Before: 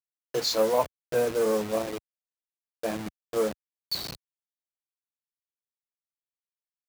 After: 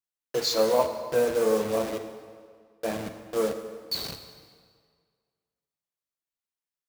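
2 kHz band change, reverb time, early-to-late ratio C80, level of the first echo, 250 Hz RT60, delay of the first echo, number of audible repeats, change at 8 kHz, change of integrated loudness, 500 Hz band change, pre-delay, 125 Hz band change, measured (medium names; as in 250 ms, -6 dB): +1.0 dB, 1.9 s, 9.5 dB, no echo, 1.7 s, no echo, no echo, +0.5 dB, +1.0 dB, +1.5 dB, 3 ms, +0.5 dB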